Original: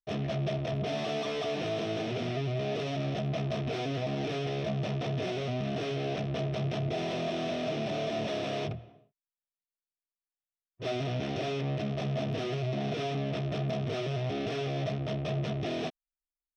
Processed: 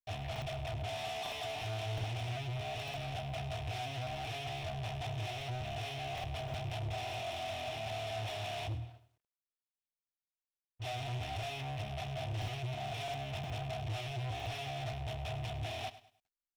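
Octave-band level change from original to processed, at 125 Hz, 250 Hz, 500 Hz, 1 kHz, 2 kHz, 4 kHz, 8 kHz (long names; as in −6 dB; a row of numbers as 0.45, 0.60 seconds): −6.0 dB, −15.5 dB, −10.0 dB, −2.0 dB, −3.0 dB, −2.5 dB, can't be measured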